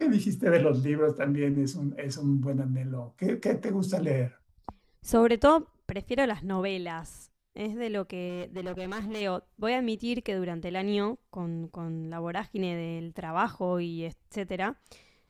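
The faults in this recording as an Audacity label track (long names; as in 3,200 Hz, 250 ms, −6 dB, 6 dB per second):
8.280000	9.220000	clipping −32 dBFS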